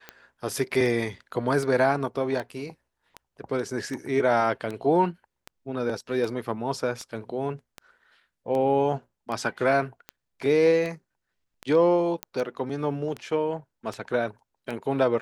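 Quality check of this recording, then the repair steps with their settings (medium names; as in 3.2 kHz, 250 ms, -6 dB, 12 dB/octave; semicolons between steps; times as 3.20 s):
tick 78 rpm -20 dBFS
12.23 s: pop -13 dBFS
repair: de-click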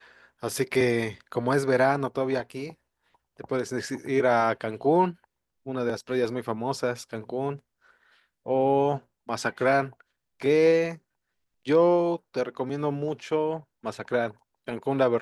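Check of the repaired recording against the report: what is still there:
nothing left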